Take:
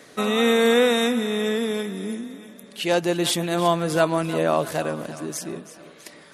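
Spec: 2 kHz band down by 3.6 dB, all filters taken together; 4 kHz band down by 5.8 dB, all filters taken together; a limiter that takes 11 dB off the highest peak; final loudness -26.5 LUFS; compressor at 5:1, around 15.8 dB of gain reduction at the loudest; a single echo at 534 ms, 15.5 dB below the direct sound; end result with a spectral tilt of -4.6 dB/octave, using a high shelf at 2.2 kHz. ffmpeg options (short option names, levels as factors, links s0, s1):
-af "equalizer=f=2000:t=o:g=-4.5,highshelf=f=2200:g=3.5,equalizer=f=4000:t=o:g=-8.5,acompressor=threshold=0.0224:ratio=5,alimiter=level_in=2.11:limit=0.0631:level=0:latency=1,volume=0.473,aecho=1:1:534:0.168,volume=4.47"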